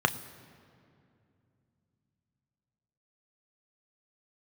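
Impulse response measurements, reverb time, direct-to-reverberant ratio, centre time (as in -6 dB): 2.6 s, 9.0 dB, 8 ms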